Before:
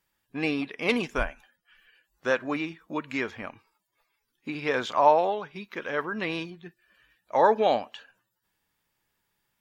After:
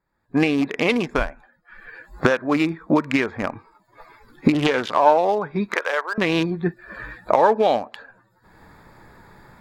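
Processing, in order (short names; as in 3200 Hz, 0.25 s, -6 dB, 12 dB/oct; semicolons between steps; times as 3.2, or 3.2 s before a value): Wiener smoothing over 15 samples; recorder AGC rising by 33 dB/s; 5.74–6.18 HPF 540 Hz 24 dB/oct; maximiser +5 dB; 4.53–5.17 Doppler distortion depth 0.36 ms; gain -1 dB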